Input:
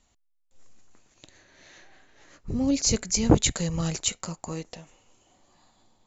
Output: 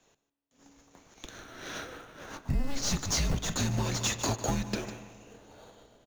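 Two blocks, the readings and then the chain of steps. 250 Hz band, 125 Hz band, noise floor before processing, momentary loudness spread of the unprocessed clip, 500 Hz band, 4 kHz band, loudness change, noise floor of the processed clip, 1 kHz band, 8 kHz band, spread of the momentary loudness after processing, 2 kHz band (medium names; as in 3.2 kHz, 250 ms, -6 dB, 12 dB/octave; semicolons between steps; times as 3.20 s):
-8.5 dB, -2.5 dB, -68 dBFS, 15 LU, -6.5 dB, -3.0 dB, -6.0 dB, -81 dBFS, 0.0 dB, no reading, 18 LU, +1.5 dB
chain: treble shelf 6.6 kHz +11.5 dB; overdrive pedal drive 31 dB, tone 1.3 kHz, clips at -5 dBFS; dynamic bell 5.2 kHz, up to +5 dB, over -39 dBFS, Q 0.9; in parallel at -6 dB: sample-and-hold 17×; on the sum: frequency shift -280 Hz; on a send: delay 151 ms -14.5 dB; on the sum: spring tank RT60 2.9 s, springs 34/47 ms, chirp 70 ms, DRR 16 dB; compression 20:1, threshold -19 dBFS, peak gain reduction 15 dB; three bands expanded up and down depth 40%; trim -7 dB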